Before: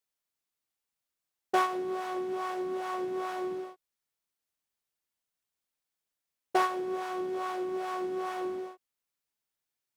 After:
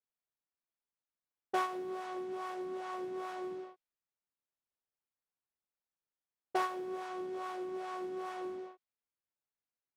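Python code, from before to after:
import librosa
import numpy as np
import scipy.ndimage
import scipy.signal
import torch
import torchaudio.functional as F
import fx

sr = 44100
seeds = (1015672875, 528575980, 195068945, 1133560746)

y = fx.dmg_noise_colour(x, sr, seeds[0], colour='violet', level_db=-72.0)
y = fx.env_lowpass(y, sr, base_hz=1400.0, full_db=-29.0)
y = y * librosa.db_to_amplitude(-6.5)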